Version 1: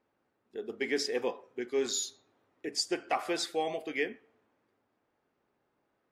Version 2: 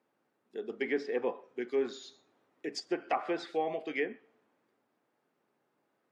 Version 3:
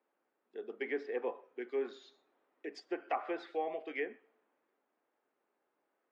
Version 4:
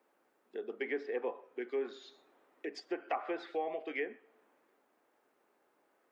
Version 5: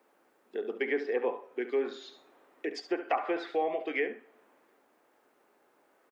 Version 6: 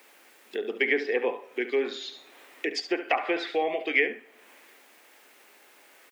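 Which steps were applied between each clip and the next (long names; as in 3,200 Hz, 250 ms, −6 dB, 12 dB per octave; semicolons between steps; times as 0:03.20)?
treble cut that deepens with the level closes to 1,800 Hz, closed at −28 dBFS; high-pass filter 130 Hz 24 dB per octave
three-way crossover with the lows and the highs turned down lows −21 dB, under 260 Hz, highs −15 dB, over 3,500 Hz; level −3.5 dB
downward compressor 1.5 to 1, threshold −56 dBFS, peak gain reduction 9.5 dB; level +8.5 dB
single-tap delay 70 ms −12 dB; level +6 dB
high shelf with overshoot 1,700 Hz +6.5 dB, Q 1.5; one half of a high-frequency compander encoder only; level +3.5 dB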